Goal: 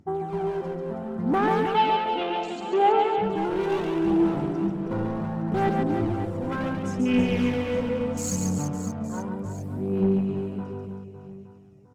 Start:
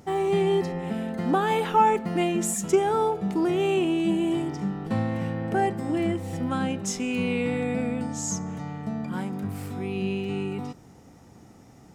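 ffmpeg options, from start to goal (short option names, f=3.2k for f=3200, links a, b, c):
-filter_complex "[0:a]afwtdn=0.0178,dynaudnorm=f=430:g=7:m=4.5dB,asoftclip=type=hard:threshold=-19.5dB,aphaser=in_gain=1:out_gain=1:delay=2.1:decay=0.51:speed=0.7:type=sinusoidal,asettb=1/sr,asplit=3[a][b][c];[a]atrim=end=1.644[d];[b]atrim=start=1.64:end=3.18,asetpts=PTS-STARTPTS,afade=t=in:d=0.004:c=qsin,afade=t=out:st=1.536:d=0.004:c=qsin,highpass=f=290:w=0.5412,highpass=f=290:w=1.3066,equalizer=f=780:t=q:w=4:g=8,equalizer=f=1.1k:t=q:w=4:g=-6,equalizer=f=1.8k:t=q:w=4:g=-6,equalizer=f=3k:t=q:w=4:g=8,lowpass=f=4k:w=0.5412,lowpass=f=4k:w=1.3066[e];[c]atrim=start=3.176[f];[d][e]acrossfade=d=0.004:c1=hsin:c2=qsin[g];[g][f]acrossfade=d=0.004:c1=qsin:c2=hsin,aecho=1:1:140|322|558.6|866.2|1266:0.631|0.398|0.251|0.158|0.1,volume=-5.5dB"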